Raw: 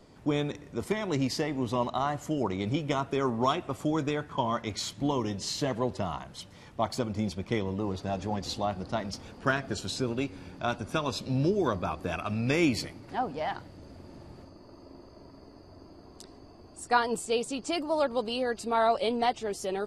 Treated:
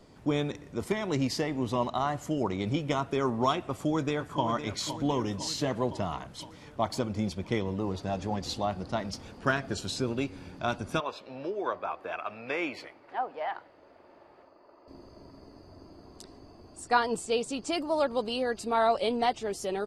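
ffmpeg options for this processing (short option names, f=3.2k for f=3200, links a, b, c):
-filter_complex "[0:a]asplit=2[a][b];[b]afade=t=in:st=3.58:d=0.01,afade=t=out:st=4.45:d=0.01,aecho=0:1:510|1020|1530|2040|2550|3060|3570|4080|4590:0.316228|0.205548|0.133606|0.0868441|0.0564486|0.0366916|0.0238495|0.0155022|0.0100764[c];[a][c]amix=inputs=2:normalize=0,asettb=1/sr,asplit=3[d][e][f];[d]atrim=end=11.004[g];[e]atrim=start=11:end=14.88,asetpts=PTS-STARTPTS,afade=t=in:d=0.004:c=qsin,afade=t=out:st=3.876:d=0.004:c=qsin,acrossover=split=410 3000:gain=0.0631 1 0.112[h][i][j];[h][i][j]amix=inputs=3:normalize=0[k];[f]atrim=start=14.876[l];[g][k]acrossfade=d=0.004:c1=hsin:c2=qsin[m];[m][l]acrossfade=d=0.004:c1=qsin:c2=hsin,asettb=1/sr,asplit=3[n][o][p];[n]atrim=end=16.814[q];[o]atrim=start=16.81:end=17.49,asetpts=PTS-STARTPTS,afade=t=in:d=0.004:c=qsin,afade=t=out:st=0.676:d=0.004:c=qsin,lowpass=9.4k[r];[p]atrim=start=17.486[s];[q][r]acrossfade=d=0.004:c1=hsin:c2=qsin[t];[t][s]acrossfade=d=0.004:c1=qsin:c2=hsin"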